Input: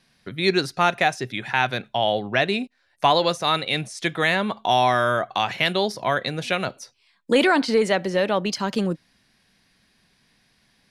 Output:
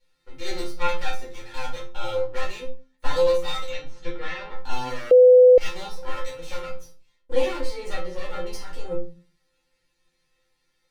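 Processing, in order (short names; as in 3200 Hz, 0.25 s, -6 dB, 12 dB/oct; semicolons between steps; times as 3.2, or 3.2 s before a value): minimum comb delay 2.2 ms; 3.68–4.56 LPF 3600 Hz 12 dB/oct; resonator bank F3 fifth, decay 0.22 s; shoebox room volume 160 m³, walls furnished, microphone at 2.3 m; 5.11–5.58 bleep 502 Hz -8 dBFS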